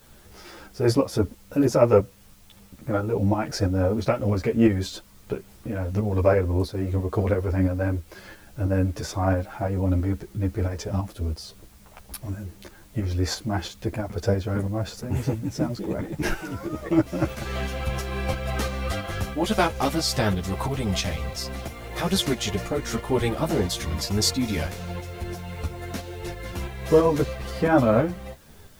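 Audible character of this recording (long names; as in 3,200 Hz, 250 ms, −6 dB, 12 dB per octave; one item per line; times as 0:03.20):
tremolo saw up 3 Hz, depth 50%
a quantiser's noise floor 10 bits, dither triangular
a shimmering, thickened sound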